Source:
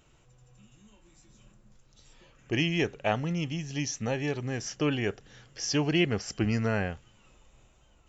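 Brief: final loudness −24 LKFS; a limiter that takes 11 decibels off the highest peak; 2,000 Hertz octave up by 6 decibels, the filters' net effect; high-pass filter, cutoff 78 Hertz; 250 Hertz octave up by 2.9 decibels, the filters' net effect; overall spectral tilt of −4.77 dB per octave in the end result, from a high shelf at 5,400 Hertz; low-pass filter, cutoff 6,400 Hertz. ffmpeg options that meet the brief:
ffmpeg -i in.wav -af "highpass=78,lowpass=6400,equalizer=frequency=250:width_type=o:gain=4,equalizer=frequency=2000:width_type=o:gain=8.5,highshelf=frequency=5400:gain=-6,volume=7dB,alimiter=limit=-11.5dB:level=0:latency=1" out.wav

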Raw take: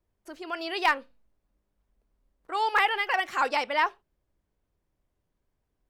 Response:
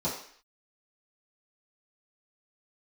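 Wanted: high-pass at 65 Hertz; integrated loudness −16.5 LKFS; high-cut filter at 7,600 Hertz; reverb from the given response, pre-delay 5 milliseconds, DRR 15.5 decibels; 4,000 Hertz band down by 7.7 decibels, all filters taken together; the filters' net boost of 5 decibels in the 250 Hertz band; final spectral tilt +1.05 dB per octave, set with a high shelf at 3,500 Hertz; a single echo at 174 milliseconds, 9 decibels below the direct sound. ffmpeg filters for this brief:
-filter_complex "[0:a]highpass=65,lowpass=7600,equalizer=frequency=250:width_type=o:gain=7.5,highshelf=frequency=3500:gain=-6,equalizer=frequency=4000:width_type=o:gain=-7.5,aecho=1:1:174:0.355,asplit=2[link_01][link_02];[1:a]atrim=start_sample=2205,adelay=5[link_03];[link_02][link_03]afir=irnorm=-1:irlink=0,volume=-23.5dB[link_04];[link_01][link_04]amix=inputs=2:normalize=0,volume=11.5dB"

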